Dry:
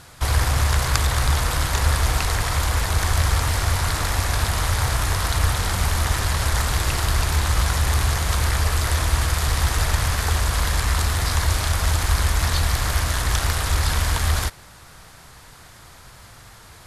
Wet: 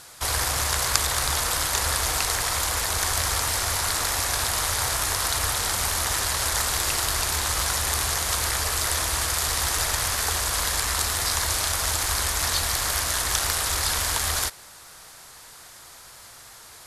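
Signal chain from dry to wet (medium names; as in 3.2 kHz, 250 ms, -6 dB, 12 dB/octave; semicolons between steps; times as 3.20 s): tone controls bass -11 dB, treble +7 dB; trim -2 dB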